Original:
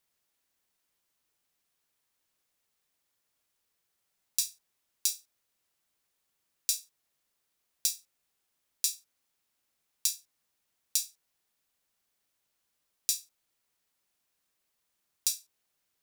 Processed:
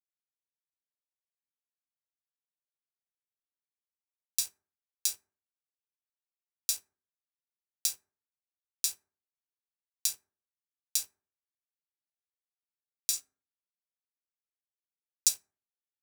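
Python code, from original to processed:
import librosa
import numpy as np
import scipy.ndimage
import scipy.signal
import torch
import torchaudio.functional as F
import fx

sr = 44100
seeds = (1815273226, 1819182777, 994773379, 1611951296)

y = fx.peak_eq(x, sr, hz=7000.0, db=7.5, octaves=0.83, at=(13.13, 15.29))
y = np.sign(y) * np.maximum(np.abs(y) - 10.0 ** (-42.0 / 20.0), 0.0)
y = fx.rev_fdn(y, sr, rt60_s=0.47, lf_ratio=1.1, hf_ratio=0.45, size_ms=23.0, drr_db=12.5)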